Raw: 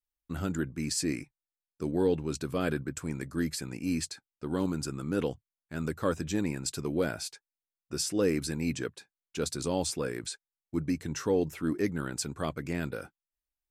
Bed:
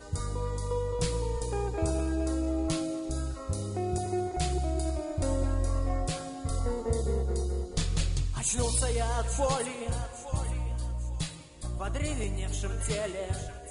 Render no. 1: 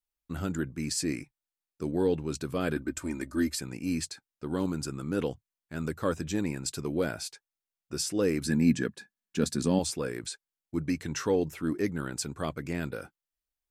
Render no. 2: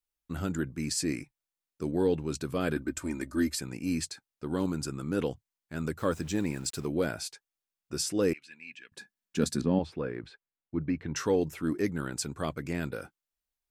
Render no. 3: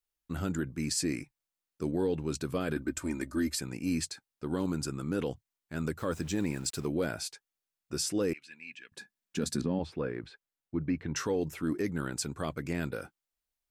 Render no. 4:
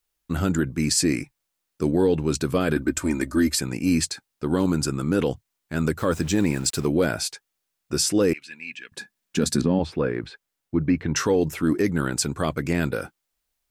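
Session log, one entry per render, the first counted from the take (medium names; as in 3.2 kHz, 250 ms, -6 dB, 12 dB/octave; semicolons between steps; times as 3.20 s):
2.76–3.60 s: comb 3.3 ms, depth 79%; 8.45–9.79 s: small resonant body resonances 210/1700 Hz, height 13 dB, ringing for 40 ms; 10.87–11.36 s: peaking EQ 2.3 kHz +4.5 dB 2.9 oct
5.99–6.86 s: small samples zeroed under -48.5 dBFS; 8.33–8.92 s: band-pass filter 2.6 kHz, Q 5.4; 9.61–11.16 s: distance through air 400 m
peak limiter -20.5 dBFS, peak gain reduction 6.5 dB
trim +10 dB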